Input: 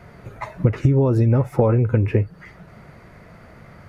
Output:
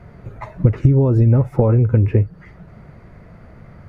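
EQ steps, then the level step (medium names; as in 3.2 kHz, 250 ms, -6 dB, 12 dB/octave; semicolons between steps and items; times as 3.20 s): tilt EQ -2 dB/octave; -2.0 dB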